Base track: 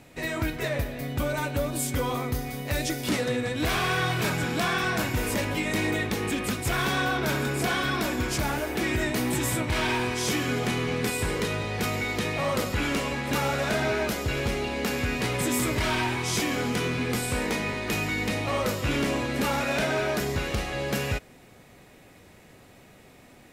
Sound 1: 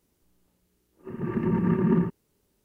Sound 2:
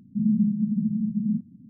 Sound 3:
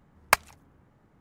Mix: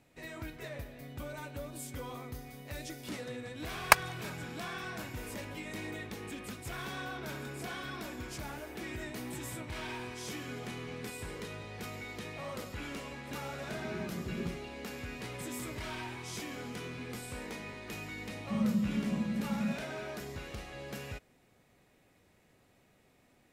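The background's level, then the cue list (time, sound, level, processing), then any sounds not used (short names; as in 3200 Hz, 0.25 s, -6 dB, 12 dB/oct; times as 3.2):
base track -14.5 dB
3.59 add 3 -0.5 dB
12.48 add 1 -17 dB + brick-wall FIR band-stop 470–1000 Hz
18.35 add 2 -8.5 dB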